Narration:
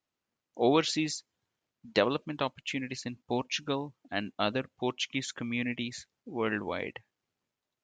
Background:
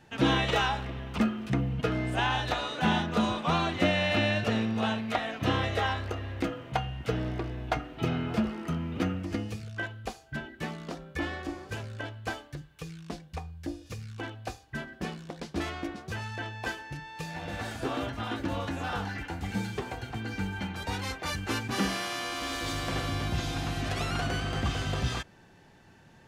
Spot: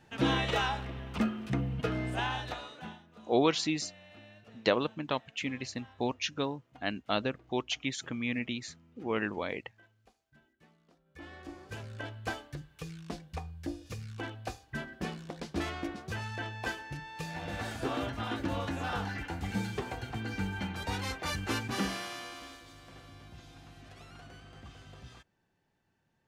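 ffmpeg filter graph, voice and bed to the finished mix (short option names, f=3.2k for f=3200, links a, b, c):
-filter_complex "[0:a]adelay=2700,volume=-1dB[a];[1:a]volume=22.5dB,afade=t=out:st=2.06:d=0.92:silence=0.0630957,afade=t=in:st=11.04:d=1.2:silence=0.0501187,afade=t=out:st=21.52:d=1.12:silence=0.112202[b];[a][b]amix=inputs=2:normalize=0"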